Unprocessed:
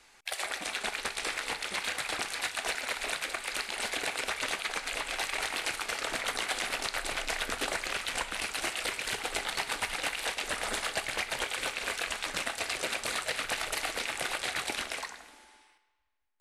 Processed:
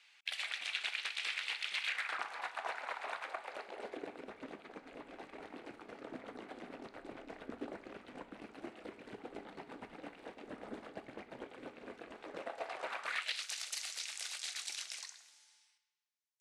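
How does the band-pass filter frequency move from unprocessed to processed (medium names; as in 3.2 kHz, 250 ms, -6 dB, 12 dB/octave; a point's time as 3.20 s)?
band-pass filter, Q 1.8
1.82 s 2.9 kHz
2.30 s 940 Hz
3.25 s 940 Hz
4.20 s 260 Hz
12.02 s 260 Hz
13.04 s 1.2 kHz
13.44 s 5.9 kHz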